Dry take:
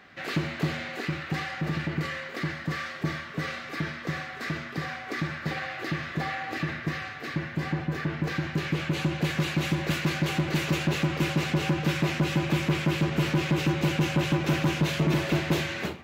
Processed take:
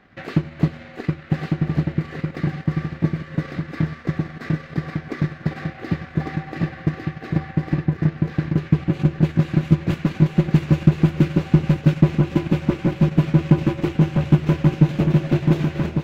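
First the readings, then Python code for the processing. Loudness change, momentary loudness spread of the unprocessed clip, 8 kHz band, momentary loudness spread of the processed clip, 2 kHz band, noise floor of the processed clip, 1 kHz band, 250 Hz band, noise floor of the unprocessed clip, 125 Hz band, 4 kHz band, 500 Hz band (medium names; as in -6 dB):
+7.5 dB, 8 LU, no reading, 10 LU, -4.0 dB, -40 dBFS, -0.5 dB, +9.0 dB, -40 dBFS, +10.0 dB, -6.5 dB, +4.5 dB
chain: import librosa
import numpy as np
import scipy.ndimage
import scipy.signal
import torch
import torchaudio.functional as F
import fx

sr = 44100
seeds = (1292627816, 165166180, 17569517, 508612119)

p1 = fx.reverse_delay(x, sr, ms=522, wet_db=-10.0)
p2 = fx.transient(p1, sr, attack_db=7, sustain_db=-10)
p3 = fx.tilt_eq(p2, sr, slope=-2.5)
p4 = p3 + fx.echo_single(p3, sr, ms=1152, db=-3.5, dry=0)
y = p4 * librosa.db_to_amplitude(-2.5)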